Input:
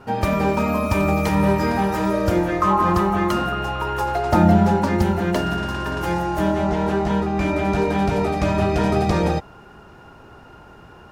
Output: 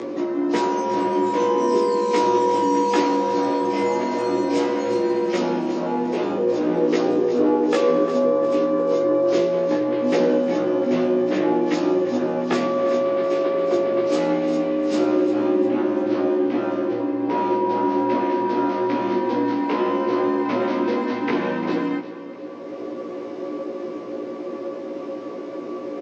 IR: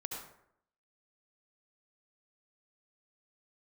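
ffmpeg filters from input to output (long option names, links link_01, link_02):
-af "acompressor=mode=upward:threshold=-23dB:ratio=2.5,afreqshift=-120,equalizer=frequency=840:width=3.1:gain=6.5,afftfilt=real='re*lt(hypot(re,im),0.631)':imag='im*lt(hypot(re,im),0.631)':win_size=1024:overlap=0.75,highpass=frequency=560:width=0.5412,highpass=frequency=560:width=1.3066,aecho=1:1:7.1:0.91,aecho=1:1:150|300|450|600|750:0.178|0.0925|0.0481|0.025|0.013,asetrate=18846,aresample=44100,volume=2dB"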